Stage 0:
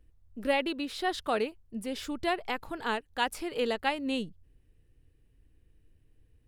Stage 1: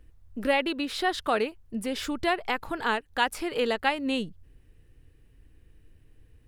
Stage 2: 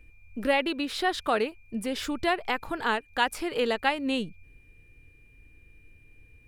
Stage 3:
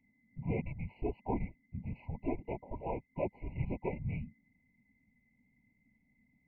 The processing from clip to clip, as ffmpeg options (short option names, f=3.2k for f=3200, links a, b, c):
-filter_complex "[0:a]equalizer=f=1.5k:t=o:w=1.6:g=3.5,asplit=2[a][b];[b]acompressor=threshold=-38dB:ratio=6,volume=2dB[c];[a][c]amix=inputs=2:normalize=0"
-af "aeval=exprs='val(0)+0.00112*sin(2*PI*2400*n/s)':c=same"
-af "afftfilt=real='hypot(re,im)*cos(2*PI*random(0))':imag='hypot(re,im)*sin(2*PI*random(1))':win_size=512:overlap=0.75,highpass=f=150:t=q:w=0.5412,highpass=f=150:t=q:w=1.307,lowpass=f=2.3k:t=q:w=0.5176,lowpass=f=2.3k:t=q:w=0.7071,lowpass=f=2.3k:t=q:w=1.932,afreqshift=-380,afftfilt=real='re*eq(mod(floor(b*sr/1024/1000),2),0)':imag='im*eq(mod(floor(b*sr/1024/1000),2),0)':win_size=1024:overlap=0.75,volume=-2.5dB"